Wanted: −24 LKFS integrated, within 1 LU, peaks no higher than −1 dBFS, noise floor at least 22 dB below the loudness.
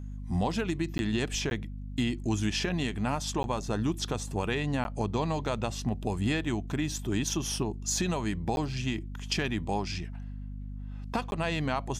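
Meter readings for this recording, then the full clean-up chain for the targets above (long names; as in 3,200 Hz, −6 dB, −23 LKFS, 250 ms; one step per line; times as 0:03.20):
number of dropouts 6; longest dropout 11 ms; mains hum 50 Hz; hum harmonics up to 250 Hz; level of the hum −36 dBFS; integrated loudness −31.5 LKFS; sample peak −16.0 dBFS; target loudness −24.0 LKFS
→ repair the gap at 0:00.98/0:01.50/0:03.43/0:04.84/0:08.56/0:11.31, 11 ms
hum removal 50 Hz, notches 5
level +7.5 dB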